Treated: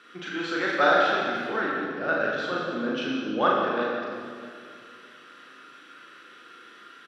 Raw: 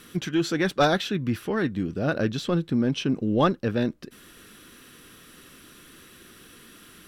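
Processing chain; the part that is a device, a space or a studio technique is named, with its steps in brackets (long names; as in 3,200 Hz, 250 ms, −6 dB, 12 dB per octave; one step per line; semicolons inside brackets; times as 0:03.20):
station announcement (band-pass filter 420–3,700 Hz; parametric band 1,400 Hz +10 dB 0.35 octaves; loudspeakers that aren't time-aligned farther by 13 metres −2 dB, 62 metres −11 dB; convolution reverb RT60 2.2 s, pre-delay 27 ms, DRR −1.5 dB)
level −4.5 dB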